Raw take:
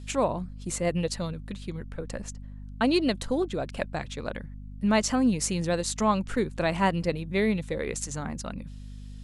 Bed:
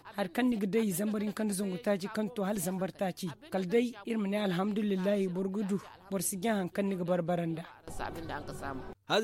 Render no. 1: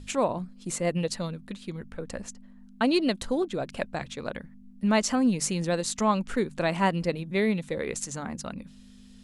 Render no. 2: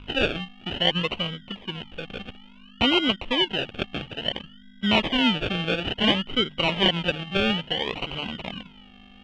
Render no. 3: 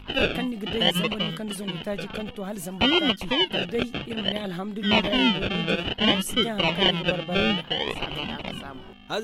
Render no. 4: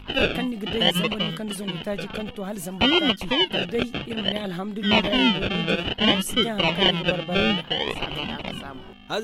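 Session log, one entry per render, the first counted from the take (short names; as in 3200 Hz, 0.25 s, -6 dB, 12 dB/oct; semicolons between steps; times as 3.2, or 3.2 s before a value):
notches 50/100/150 Hz
decimation with a swept rate 35×, swing 60% 0.58 Hz; synth low-pass 3000 Hz, resonance Q 13
add bed -0.5 dB
gain +1.5 dB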